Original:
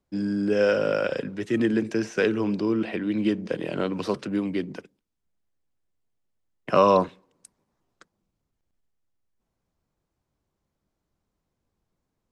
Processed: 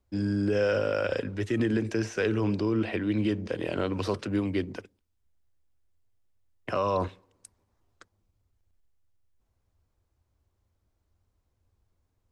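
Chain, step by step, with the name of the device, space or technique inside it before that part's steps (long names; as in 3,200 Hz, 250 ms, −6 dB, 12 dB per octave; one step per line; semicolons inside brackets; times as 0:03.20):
car stereo with a boomy subwoofer (low shelf with overshoot 120 Hz +7 dB, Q 3; brickwall limiter −17.5 dBFS, peak gain reduction 10.5 dB)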